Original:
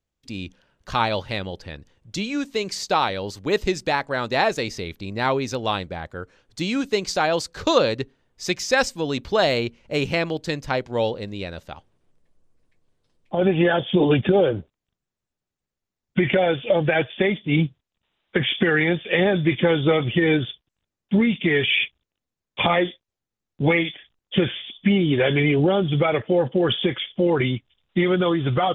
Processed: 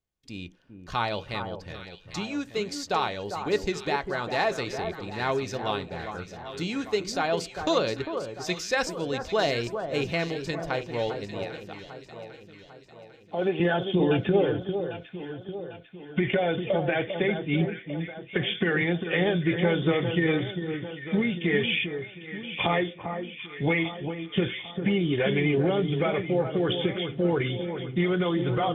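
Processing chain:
0:11.44–0:13.60: high-pass filter 250 Hz
delay that swaps between a low-pass and a high-pass 399 ms, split 1,500 Hz, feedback 69%, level −7.5 dB
on a send at −8.5 dB: convolution reverb RT60 0.35 s, pre-delay 3 ms
on the sum: level −6.5 dB

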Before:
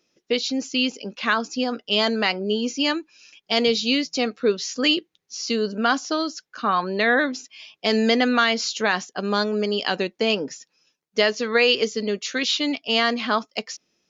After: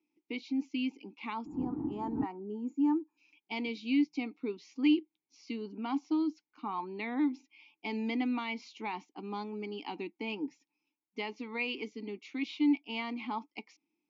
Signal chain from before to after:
0:01.45–0:02.23: wind on the microphone 190 Hz −19 dBFS
0:01.46–0:03.18: gain on a spectral selection 1,900–6,600 Hz −22 dB
formant filter u

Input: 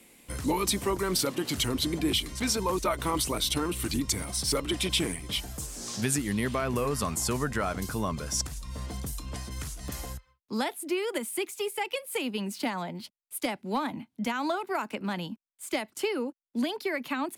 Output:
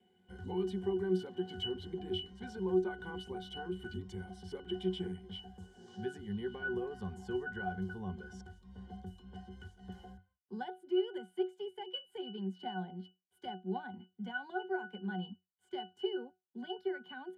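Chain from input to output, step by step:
low-shelf EQ 180 Hz −11 dB
resonances in every octave F#, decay 0.22 s
level +7 dB

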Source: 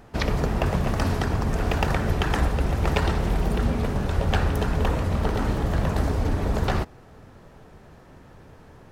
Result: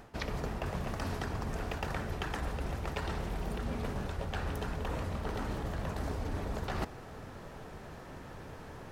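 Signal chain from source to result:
low-shelf EQ 410 Hz −4 dB
reversed playback
downward compressor 16 to 1, threshold −36 dBFS, peak gain reduction 18 dB
reversed playback
level +4 dB

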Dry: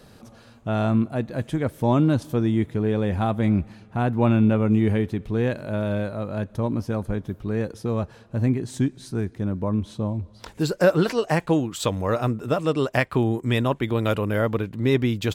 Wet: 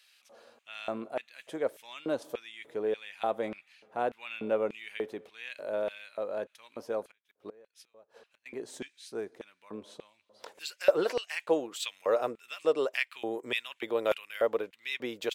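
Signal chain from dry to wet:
0:07.10–0:08.46: gate with flip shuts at −19 dBFS, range −25 dB
auto-filter high-pass square 1.7 Hz 500–2,500 Hz
level −8 dB

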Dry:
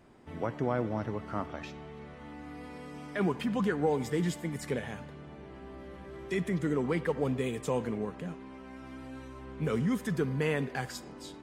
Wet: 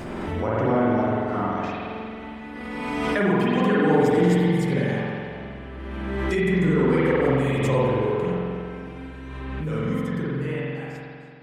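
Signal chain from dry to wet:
fade-out on the ending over 3.19 s
spring reverb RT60 2.3 s, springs 45 ms, chirp 45 ms, DRR −9 dB
background raised ahead of every attack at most 23 dB per second
level +1 dB

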